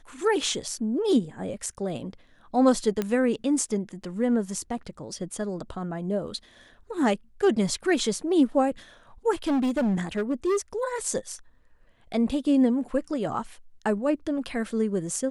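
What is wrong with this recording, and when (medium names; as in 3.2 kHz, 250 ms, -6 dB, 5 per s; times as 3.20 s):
3.02 s: pop -14 dBFS
9.48–10.58 s: clipped -21 dBFS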